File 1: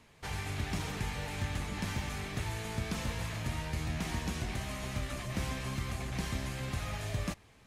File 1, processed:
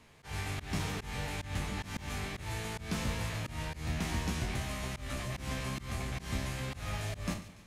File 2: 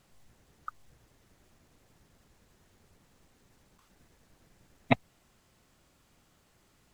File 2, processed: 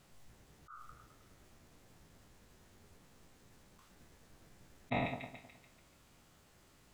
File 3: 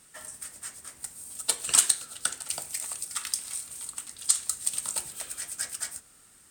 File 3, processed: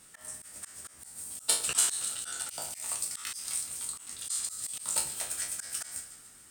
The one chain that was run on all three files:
peak hold with a decay on every bin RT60 0.33 s
echo with a time of its own for lows and highs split 1,700 Hz, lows 105 ms, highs 144 ms, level −15.5 dB
volume swells 152 ms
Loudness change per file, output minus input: −0.5, −8.0, −3.0 LU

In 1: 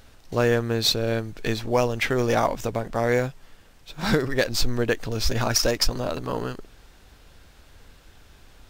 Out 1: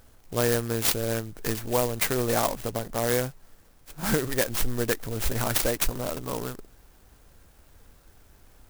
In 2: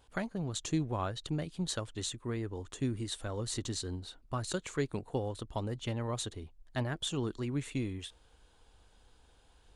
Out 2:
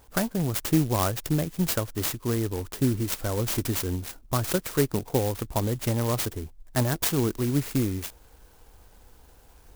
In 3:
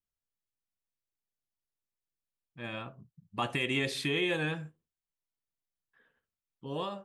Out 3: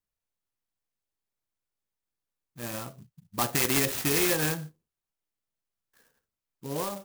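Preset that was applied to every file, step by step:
dynamic equaliser 2,300 Hz, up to +4 dB, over −38 dBFS, Q 0.88
converter with an unsteady clock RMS 0.095 ms
loudness normalisation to −27 LKFS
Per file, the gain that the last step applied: −4.0, +9.5, +3.5 decibels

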